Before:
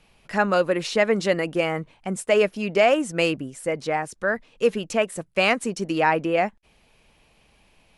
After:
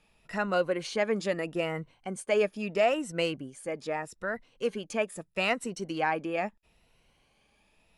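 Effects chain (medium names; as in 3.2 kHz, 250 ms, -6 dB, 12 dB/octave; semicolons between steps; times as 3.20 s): drifting ripple filter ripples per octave 2, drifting +0.78 Hz, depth 8 dB; trim -8.5 dB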